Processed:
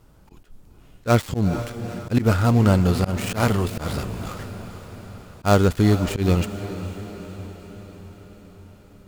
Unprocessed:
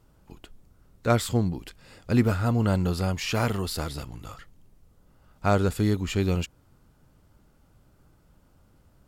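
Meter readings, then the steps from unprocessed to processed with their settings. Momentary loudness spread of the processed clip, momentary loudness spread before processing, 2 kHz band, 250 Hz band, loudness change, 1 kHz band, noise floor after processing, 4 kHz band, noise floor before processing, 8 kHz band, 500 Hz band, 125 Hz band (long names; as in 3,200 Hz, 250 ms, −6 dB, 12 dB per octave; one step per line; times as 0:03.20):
21 LU, 15 LU, +4.0 dB, +5.5 dB, +4.5 dB, +5.0 dB, −51 dBFS, +2.0 dB, −61 dBFS, +2.5 dB, +5.0 dB, +6.0 dB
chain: gap after every zero crossing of 0.11 ms
feedback delay with all-pass diffusion 466 ms, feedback 60%, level −13 dB
volume swells 101 ms
level +6.5 dB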